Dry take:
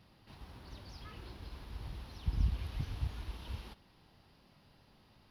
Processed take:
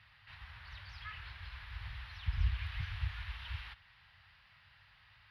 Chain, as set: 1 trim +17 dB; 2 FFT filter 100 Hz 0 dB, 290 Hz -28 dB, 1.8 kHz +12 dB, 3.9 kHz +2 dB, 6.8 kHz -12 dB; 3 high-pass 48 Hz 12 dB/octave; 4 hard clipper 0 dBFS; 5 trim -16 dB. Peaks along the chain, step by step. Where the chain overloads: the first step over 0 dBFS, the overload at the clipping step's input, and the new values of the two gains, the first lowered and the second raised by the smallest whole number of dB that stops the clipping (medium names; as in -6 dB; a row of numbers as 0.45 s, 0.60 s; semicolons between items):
-2.0 dBFS, -4.0 dBFS, -6.0 dBFS, -6.0 dBFS, -22.0 dBFS; nothing clips